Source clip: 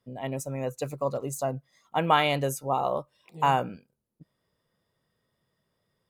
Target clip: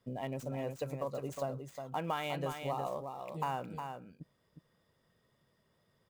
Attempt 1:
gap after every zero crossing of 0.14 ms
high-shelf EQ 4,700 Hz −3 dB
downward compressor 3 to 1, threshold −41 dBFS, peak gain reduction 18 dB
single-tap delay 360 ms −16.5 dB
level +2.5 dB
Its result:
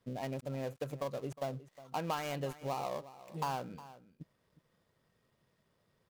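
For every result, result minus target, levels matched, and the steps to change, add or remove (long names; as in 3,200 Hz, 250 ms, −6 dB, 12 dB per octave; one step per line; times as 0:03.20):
echo-to-direct −10 dB; gap after every zero crossing: distortion +9 dB
change: single-tap delay 360 ms −6.5 dB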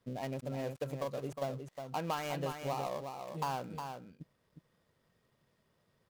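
gap after every zero crossing: distortion +9 dB
change: gap after every zero crossing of 0.044 ms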